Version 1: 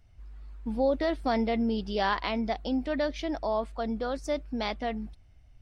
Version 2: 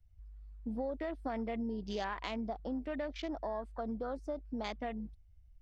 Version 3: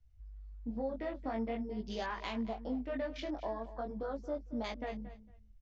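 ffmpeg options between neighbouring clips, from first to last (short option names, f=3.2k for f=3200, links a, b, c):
-filter_complex "[0:a]highshelf=f=6.1k:g=7.5,acrossover=split=82|4800[a][b][c];[a]acompressor=threshold=-47dB:ratio=4[d];[b]acompressor=threshold=-32dB:ratio=4[e];[c]acompressor=threshold=-54dB:ratio=4[f];[d][e][f]amix=inputs=3:normalize=0,afwtdn=0.00631,volume=-3.5dB"
-af "flanger=delay=17:depth=6.1:speed=0.45,aecho=1:1:227|454:0.178|0.032,aresample=16000,aresample=44100,volume=2.5dB"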